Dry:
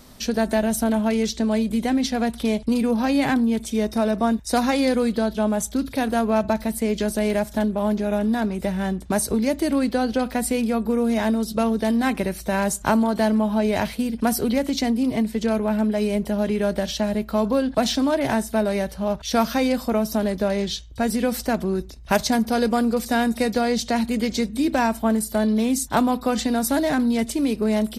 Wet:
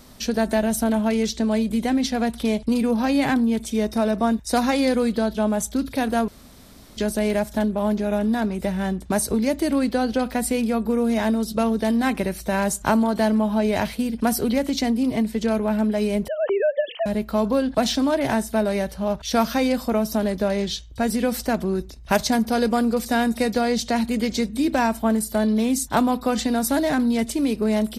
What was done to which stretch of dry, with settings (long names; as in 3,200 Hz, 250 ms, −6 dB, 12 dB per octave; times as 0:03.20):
0:06.28–0:06.97: fill with room tone
0:16.28–0:17.06: three sine waves on the formant tracks